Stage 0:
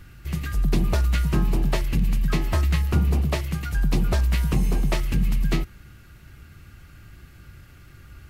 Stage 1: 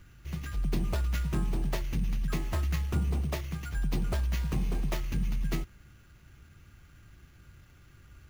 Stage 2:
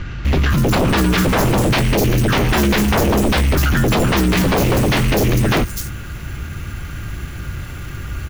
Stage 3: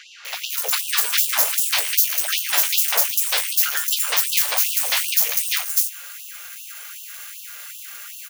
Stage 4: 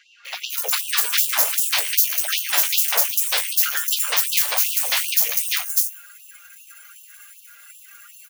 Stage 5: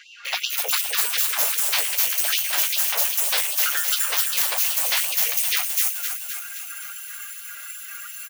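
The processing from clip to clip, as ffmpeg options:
-af "acrusher=samples=5:mix=1:aa=0.000001,volume=-8.5dB"
-filter_complex "[0:a]aeval=exprs='0.141*sin(PI/2*7.94*val(0)/0.141)':c=same,acrossover=split=5200[a][b];[b]adelay=250[c];[a][c]amix=inputs=2:normalize=0,volume=5.5dB"
-af "crystalizer=i=8:c=0,afftfilt=real='re*gte(b*sr/1024,420*pow(2700/420,0.5+0.5*sin(2*PI*2.6*pts/sr)))':imag='im*gte(b*sr/1024,420*pow(2700/420,0.5+0.5*sin(2*PI*2.6*pts/sr)))':win_size=1024:overlap=0.75,volume=-12dB"
-af "afftdn=nr=14:nf=-36"
-af "areverse,acompressor=threshold=-28dB:ratio=4,areverse,aecho=1:1:259|518|777|1036|1295|1554|1813|2072:0.422|0.249|0.147|0.0866|0.0511|0.0301|0.0178|0.0105,volume=8dB"

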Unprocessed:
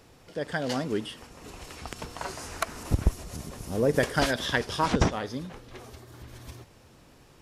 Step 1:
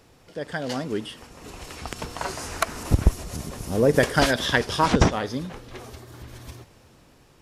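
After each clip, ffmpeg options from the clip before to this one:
-af "dynaudnorm=f=420:g=7:m=6dB"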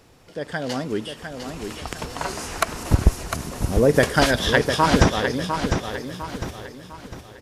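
-af "aecho=1:1:703|1406|2109|2812|3515:0.447|0.179|0.0715|0.0286|0.0114,volume=2dB"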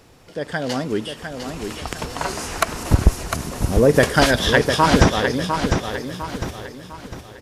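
-af "asoftclip=type=tanh:threshold=-3dB,volume=3dB"

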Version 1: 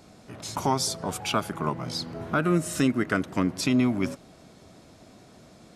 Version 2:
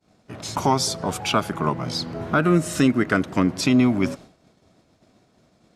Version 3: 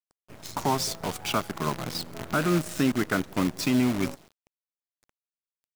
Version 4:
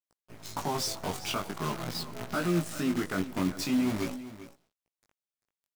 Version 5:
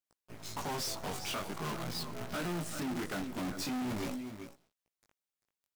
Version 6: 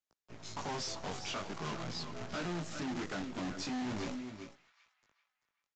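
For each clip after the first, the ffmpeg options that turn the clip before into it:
-af "equalizer=f=11k:w=0.84:g=-5,acontrast=36,agate=range=-33dB:threshold=-36dB:ratio=3:detection=peak"
-af "acrusher=bits=5:dc=4:mix=0:aa=0.000001,volume=-6dB"
-af "alimiter=limit=-17.5dB:level=0:latency=1:release=21,flanger=delay=16.5:depth=5:speed=0.45,aecho=1:1:392:0.188"
-af "volume=34dB,asoftclip=hard,volume=-34dB"
-filter_complex "[0:a]acrossover=split=220|1200[a][b][c];[b]acrusher=bits=2:mode=log:mix=0:aa=0.000001[d];[c]asplit=2[e][f];[f]adelay=386,lowpass=f=3.7k:p=1,volume=-11dB,asplit=2[g][h];[h]adelay=386,lowpass=f=3.7k:p=1,volume=0.42,asplit=2[i][j];[j]adelay=386,lowpass=f=3.7k:p=1,volume=0.42,asplit=2[k][l];[l]adelay=386,lowpass=f=3.7k:p=1,volume=0.42[m];[e][g][i][k][m]amix=inputs=5:normalize=0[n];[a][d][n]amix=inputs=3:normalize=0,aresample=16000,aresample=44100,volume=-2dB"

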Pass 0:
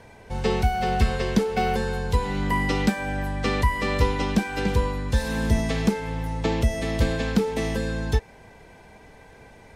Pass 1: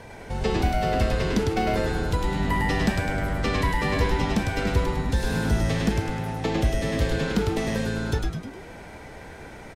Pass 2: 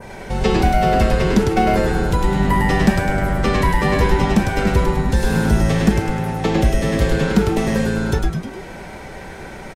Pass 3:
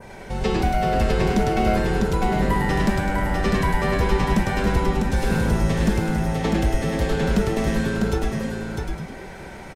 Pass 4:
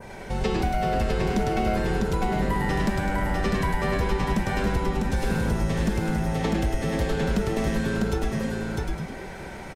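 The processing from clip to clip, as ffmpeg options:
-filter_complex "[0:a]acompressor=threshold=-40dB:ratio=1.5,asplit=2[a][b];[b]asplit=7[c][d][e][f][g][h][i];[c]adelay=103,afreqshift=-110,volume=-3dB[j];[d]adelay=206,afreqshift=-220,volume=-9dB[k];[e]adelay=309,afreqshift=-330,volume=-15dB[l];[f]adelay=412,afreqshift=-440,volume=-21.1dB[m];[g]adelay=515,afreqshift=-550,volume=-27.1dB[n];[h]adelay=618,afreqshift=-660,volume=-33.1dB[o];[i]adelay=721,afreqshift=-770,volume=-39.1dB[p];[j][k][l][m][n][o][p]amix=inputs=7:normalize=0[q];[a][q]amix=inputs=2:normalize=0,volume=5dB"
-af "aecho=1:1:5.3:0.34,adynamicequalizer=threshold=0.00501:dfrequency=3900:dqfactor=0.94:tfrequency=3900:tqfactor=0.94:attack=5:release=100:ratio=0.375:range=2.5:mode=cutabove:tftype=bell,volume=7.5dB"
-af "volume=7dB,asoftclip=hard,volume=-7dB,aecho=1:1:650:0.631,volume=-5.5dB"
-af "acompressor=threshold=-22dB:ratio=2.5"

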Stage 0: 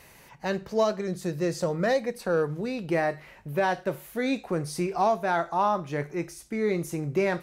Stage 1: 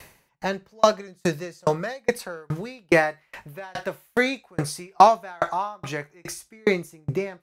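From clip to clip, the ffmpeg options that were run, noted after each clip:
-filter_complex "[0:a]acrossover=split=720[a][b];[b]dynaudnorm=f=150:g=11:m=8.5dB[c];[a][c]amix=inputs=2:normalize=0,aeval=exprs='val(0)*pow(10,-38*if(lt(mod(2.4*n/s,1),2*abs(2.4)/1000),1-mod(2.4*n/s,1)/(2*abs(2.4)/1000),(mod(2.4*n/s,1)-2*abs(2.4)/1000)/(1-2*abs(2.4)/1000))/20)':c=same,volume=8.5dB"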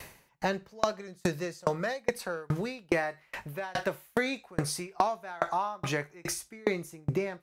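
-af "acompressor=threshold=-26dB:ratio=6,volume=1dB"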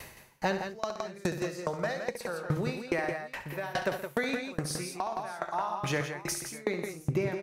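-filter_complex "[0:a]asplit=2[a][b];[b]aecho=0:1:67|122|167|175|606:0.299|0.168|0.398|0.1|0.112[c];[a][c]amix=inputs=2:normalize=0,alimiter=limit=-16.5dB:level=0:latency=1:release=367"

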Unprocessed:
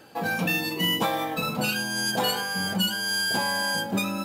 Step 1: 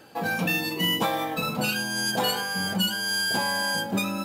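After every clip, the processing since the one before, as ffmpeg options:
-af anull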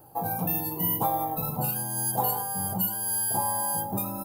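-af "firequalizer=gain_entry='entry(130,0);entry(210,-15);entry(320,-10);entry(520,-12);entry(820,-3);entry(1600,-24);entry(2300,-27);entry(7000,-17);entry(11000,1);entry(15000,7)':delay=0.05:min_phase=1,volume=6dB"

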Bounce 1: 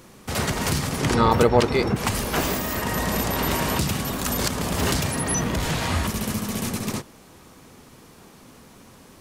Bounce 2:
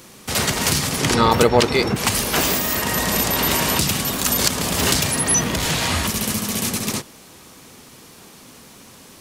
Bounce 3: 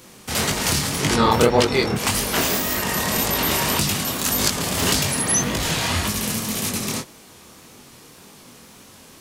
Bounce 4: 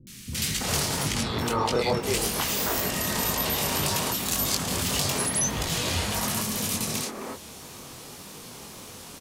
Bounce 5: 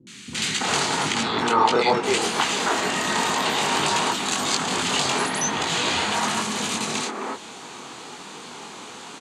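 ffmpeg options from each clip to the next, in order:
-filter_complex "[0:a]lowshelf=f=70:g=-7.5,acrossover=split=2300[a][b];[b]acontrast=62[c];[a][c]amix=inputs=2:normalize=0,volume=2.5dB"
-af "flanger=delay=19.5:depth=7.1:speed=1.8,volume=1.5dB"
-filter_complex "[0:a]acompressor=threshold=-34dB:ratio=2,acrossover=split=260|1800[a][b][c];[c]adelay=70[d];[b]adelay=330[e];[a][e][d]amix=inputs=3:normalize=0,volume=4dB"
-af "highpass=260,equalizer=f=560:t=q:w=4:g=-7,equalizer=f=860:t=q:w=4:g=4,equalizer=f=1.4k:t=q:w=4:g=3,equalizer=f=5.4k:t=q:w=4:g=-10,lowpass=f=7.3k:w=0.5412,lowpass=f=7.3k:w=1.3066,volume=7dB"

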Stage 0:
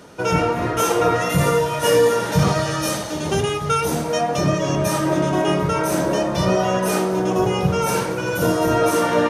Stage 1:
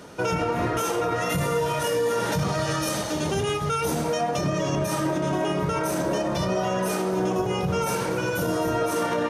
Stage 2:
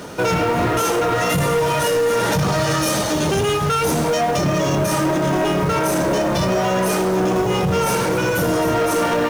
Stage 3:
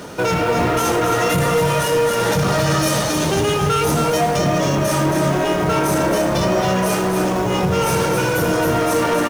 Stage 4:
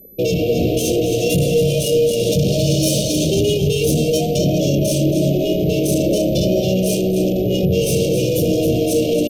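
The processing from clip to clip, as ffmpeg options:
-af "alimiter=limit=-16.5dB:level=0:latency=1:release=94"
-filter_complex "[0:a]asplit=2[a][b];[b]acrusher=bits=2:mode=log:mix=0:aa=0.000001,volume=-3dB[c];[a][c]amix=inputs=2:normalize=0,asoftclip=type=tanh:threshold=-19.5dB,volume=5.5dB"
-af "aecho=1:1:271:0.531"
-af "anlmdn=1000,aeval=exprs='val(0)+0.00631*sin(2*PI*12000*n/s)':c=same,asuperstop=centerf=1300:order=12:qfactor=0.63,volume=2.5dB"

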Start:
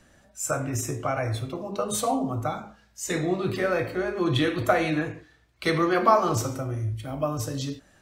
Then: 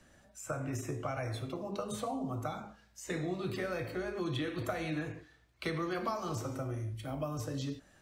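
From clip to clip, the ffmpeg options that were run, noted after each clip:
-filter_complex "[0:a]acrossover=split=170|3100[a][b][c];[a]acompressor=threshold=-36dB:ratio=4[d];[b]acompressor=threshold=-31dB:ratio=4[e];[c]acompressor=threshold=-45dB:ratio=4[f];[d][e][f]amix=inputs=3:normalize=0,volume=-4.5dB"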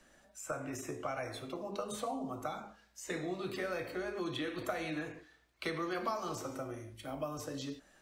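-af "equalizer=f=100:w=0.98:g=-14"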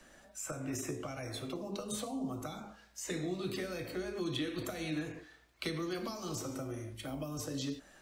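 -filter_complex "[0:a]acrossover=split=350|3000[a][b][c];[b]acompressor=threshold=-50dB:ratio=6[d];[a][d][c]amix=inputs=3:normalize=0,volume=5dB"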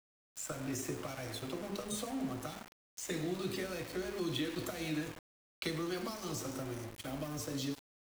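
-af "aeval=exprs='val(0)*gte(abs(val(0)),0.00708)':c=same"

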